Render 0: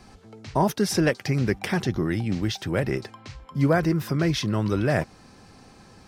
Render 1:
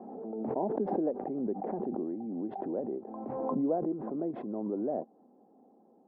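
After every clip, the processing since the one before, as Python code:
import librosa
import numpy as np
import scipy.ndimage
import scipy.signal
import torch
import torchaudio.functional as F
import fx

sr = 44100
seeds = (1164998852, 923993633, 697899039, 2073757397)

y = scipy.signal.sosfilt(scipy.signal.ellip(3, 1.0, 80, [230.0, 780.0], 'bandpass', fs=sr, output='sos'), x)
y = fx.pre_swell(y, sr, db_per_s=29.0)
y = F.gain(torch.from_numpy(y), -7.5).numpy()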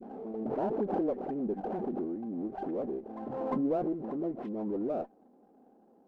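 y = fx.dispersion(x, sr, late='highs', ms=77.0, hz=1200.0)
y = fx.running_max(y, sr, window=5)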